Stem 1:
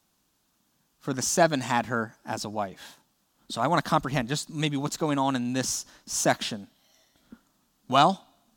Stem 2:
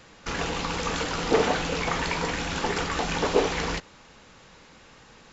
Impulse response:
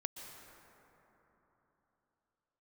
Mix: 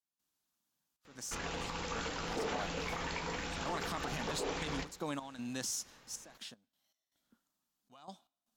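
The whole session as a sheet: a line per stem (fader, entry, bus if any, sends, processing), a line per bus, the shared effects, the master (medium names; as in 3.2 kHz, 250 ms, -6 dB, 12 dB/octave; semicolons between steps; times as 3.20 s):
2.02 s -17 dB -> 2.81 s -8.5 dB -> 5.81 s -8.5 dB -> 6.39 s -18.5 dB, 0.00 s, no send, no echo send, tilt EQ +1.5 dB/octave; peak limiter -16.5 dBFS, peak gain reduction 11.5 dB; trance gate ".xxxx.x.x" 78 bpm -12 dB
-10.5 dB, 1.05 s, no send, echo send -18.5 dB, hum notches 60/120/180/240/300/360/420/480 Hz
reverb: none
echo: feedback delay 70 ms, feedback 55%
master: peak limiter -27.5 dBFS, peak gain reduction 9 dB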